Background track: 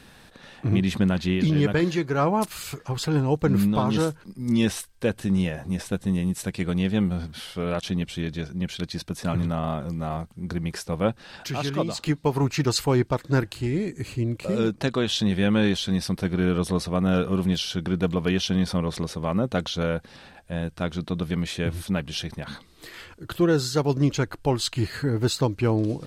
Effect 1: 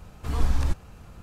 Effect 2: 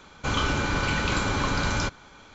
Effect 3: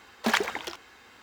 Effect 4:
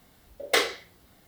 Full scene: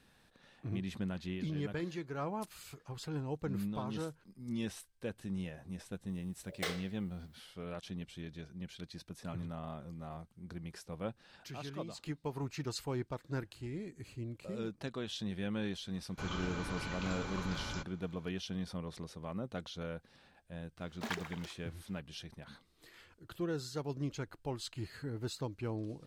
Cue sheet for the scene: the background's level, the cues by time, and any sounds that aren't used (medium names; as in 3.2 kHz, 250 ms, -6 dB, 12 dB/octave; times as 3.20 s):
background track -16.5 dB
6.09 s: add 4 -15.5 dB
15.94 s: add 2 -16 dB
20.77 s: add 3 -15 dB
not used: 1